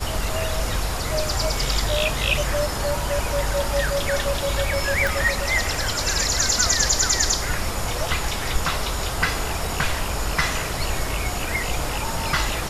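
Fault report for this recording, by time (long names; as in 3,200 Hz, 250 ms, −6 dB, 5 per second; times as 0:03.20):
0:05.07: click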